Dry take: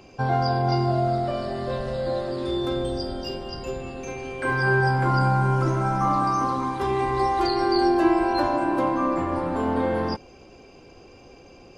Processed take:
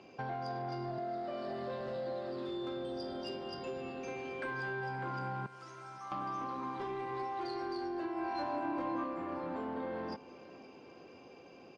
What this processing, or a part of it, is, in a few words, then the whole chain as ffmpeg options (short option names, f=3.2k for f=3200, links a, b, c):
AM radio: -filter_complex "[0:a]asettb=1/sr,asplit=3[a][b][c];[a]atrim=end=0.984[d];[b]atrim=start=0.98:end=1.5,asetpts=PTS-STARTPTS,afade=t=in:d=0.004:c=qsin,afade=t=out:st=0.516:d=0.004:c=qsin,highpass=f=150:w=0.5412,highpass=f=150:w=1.3066[e];[c]atrim=start=1.496[f];[d][e]acrossfade=d=0.004:c1=hsin:c2=qsin[g];[g][f]acrossfade=d=0.004:c1=qsin:c2=hsin,asettb=1/sr,asplit=3[h][i][j];[h]atrim=end=5.464[k];[i]atrim=start=5.46:end=6.12,asetpts=PTS-STARTPTS,afade=t=in:d=0.004:c=qsin,afade=t=out:st=0.656:d=0.004:c=qsin,aderivative[l];[j]atrim=start=6.116[m];[k][l]acrossfade=d=0.004:c1=hsin:c2=qsin[n];[n][m]acrossfade=d=0.004:c1=qsin:c2=hsin,highpass=170,lowpass=4.4k,acompressor=threshold=-29dB:ratio=6,asoftclip=type=tanh:threshold=-24.5dB,asettb=1/sr,asplit=3[o][p][q];[o]atrim=end=8.144[r];[p]atrim=start=8.14:end=9.04,asetpts=PTS-STARTPTS,afade=t=in:d=0.004:c=qsin,afade=t=out:st=0.896:d=0.004:c=qsin,asplit=2[s][t];[t]adelay=24,volume=-2dB[u];[s][u]amix=inputs=2:normalize=0,atrim=end_sample=39690[v];[q]atrim=start=9.036[w];[r][v]acrossfade=d=0.004:c1=hsin:c2=qsin[x];[x][w]acrossfade=d=0.004:c1=qsin:c2=hsin,aecho=1:1:520|1040|1560|2080|2600:0.119|0.0689|0.04|0.0232|0.0134,volume=-6dB"